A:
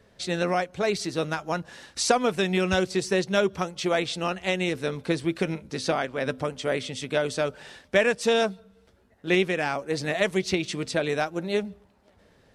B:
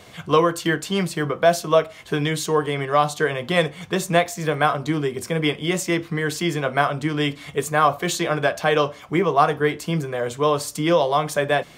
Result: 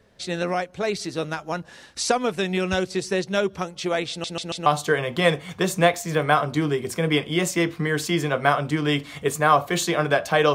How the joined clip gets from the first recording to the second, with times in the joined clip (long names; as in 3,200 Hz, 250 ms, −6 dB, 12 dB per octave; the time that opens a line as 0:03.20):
A
0:04.10: stutter in place 0.14 s, 4 plays
0:04.66: continue with B from 0:02.98